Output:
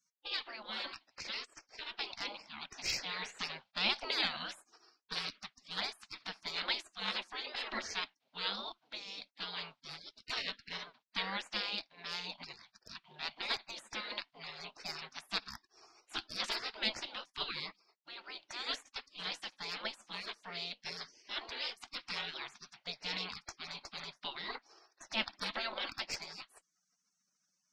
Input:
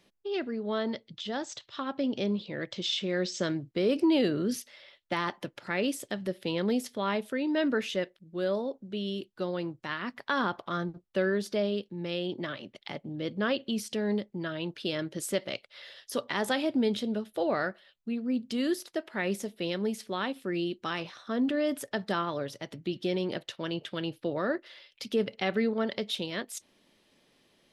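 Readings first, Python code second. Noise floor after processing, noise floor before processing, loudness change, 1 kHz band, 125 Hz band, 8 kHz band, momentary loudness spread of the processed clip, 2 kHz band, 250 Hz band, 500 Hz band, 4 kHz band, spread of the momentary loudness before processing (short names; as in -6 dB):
-83 dBFS, -69 dBFS, -7.5 dB, -7.5 dB, -19.0 dB, -6.5 dB, 11 LU, -4.0 dB, -23.0 dB, -20.0 dB, +0.5 dB, 8 LU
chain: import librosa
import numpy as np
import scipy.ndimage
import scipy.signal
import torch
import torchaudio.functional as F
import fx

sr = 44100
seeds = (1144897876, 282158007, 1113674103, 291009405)

y = fx.cabinet(x, sr, low_hz=450.0, low_slope=24, high_hz=4300.0, hz=(620.0, 1200.0, 1800.0), db=(-10, -6, -8))
y = fx.cheby_harmonics(y, sr, harmonics=(6,), levels_db=(-40,), full_scale_db=-18.5)
y = fx.spec_gate(y, sr, threshold_db=-25, keep='weak')
y = F.gain(torch.from_numpy(y), 16.0).numpy()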